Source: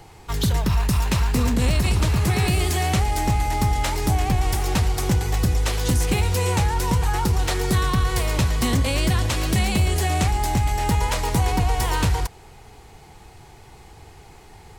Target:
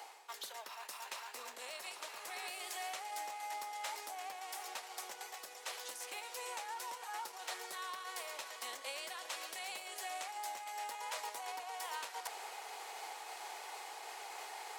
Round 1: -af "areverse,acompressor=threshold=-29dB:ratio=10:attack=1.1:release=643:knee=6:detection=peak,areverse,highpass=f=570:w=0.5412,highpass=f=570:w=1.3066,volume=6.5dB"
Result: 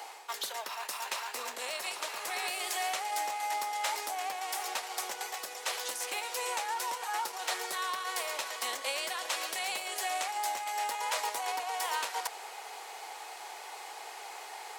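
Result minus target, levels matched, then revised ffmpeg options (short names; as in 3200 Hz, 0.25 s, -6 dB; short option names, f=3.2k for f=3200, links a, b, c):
compressor: peak gain reduction -9.5 dB
-af "areverse,acompressor=threshold=-39.5dB:ratio=10:attack=1.1:release=643:knee=6:detection=peak,areverse,highpass=f=570:w=0.5412,highpass=f=570:w=1.3066,volume=6.5dB"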